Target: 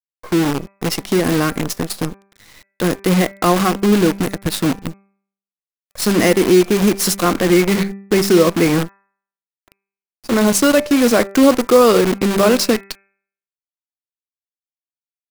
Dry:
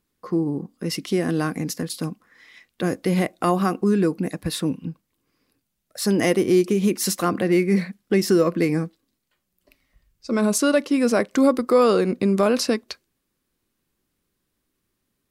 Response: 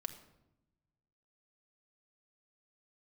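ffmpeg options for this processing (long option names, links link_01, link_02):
-af "acrusher=bits=5:dc=4:mix=0:aa=0.000001,bandreject=frequency=196.9:width_type=h:width=4,bandreject=frequency=393.8:width_type=h:width=4,bandreject=frequency=590.7:width_type=h:width=4,bandreject=frequency=787.6:width_type=h:width=4,bandreject=frequency=984.5:width_type=h:width=4,bandreject=frequency=1181.4:width_type=h:width=4,bandreject=frequency=1378.3:width_type=h:width=4,bandreject=frequency=1575.2:width_type=h:width=4,bandreject=frequency=1772.1:width_type=h:width=4,bandreject=frequency=1969:width_type=h:width=4,bandreject=frequency=2165.9:width_type=h:width=4,bandreject=frequency=2362.8:width_type=h:width=4,bandreject=frequency=2559.7:width_type=h:width=4,volume=6dB"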